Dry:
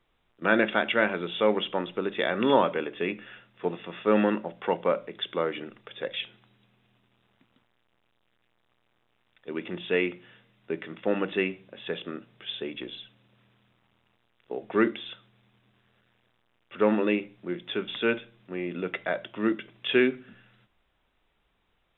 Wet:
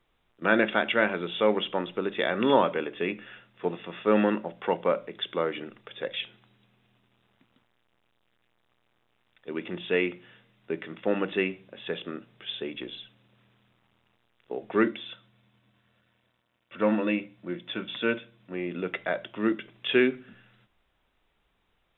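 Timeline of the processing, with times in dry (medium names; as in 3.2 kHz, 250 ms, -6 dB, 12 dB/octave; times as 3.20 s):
14.83–18.54 s: comb of notches 410 Hz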